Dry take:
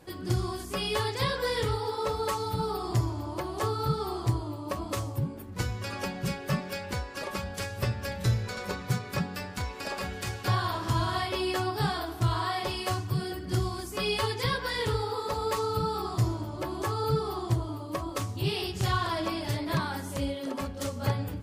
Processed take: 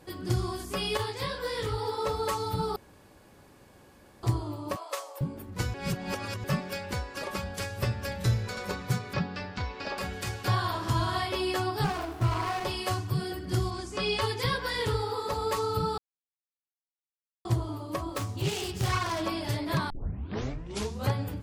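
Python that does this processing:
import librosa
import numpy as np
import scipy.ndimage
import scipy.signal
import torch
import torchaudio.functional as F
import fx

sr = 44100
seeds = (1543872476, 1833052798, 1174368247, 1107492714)

y = fx.detune_double(x, sr, cents=46, at=(0.97, 1.78))
y = fx.ellip_highpass(y, sr, hz=490.0, order=4, stop_db=80, at=(4.76, 5.21))
y = fx.lowpass(y, sr, hz=5200.0, slope=24, at=(9.13, 9.98))
y = fx.running_max(y, sr, window=9, at=(11.84, 12.65))
y = fx.lowpass(y, sr, hz=8300.0, slope=24, at=(13.7, 14.2), fade=0.02)
y = fx.self_delay(y, sr, depth_ms=0.23, at=(18.14, 19.23))
y = fx.edit(y, sr, fx.room_tone_fill(start_s=2.76, length_s=1.47),
    fx.reverse_span(start_s=5.74, length_s=0.7),
    fx.silence(start_s=15.98, length_s=1.47),
    fx.tape_start(start_s=19.9, length_s=1.21), tone=tone)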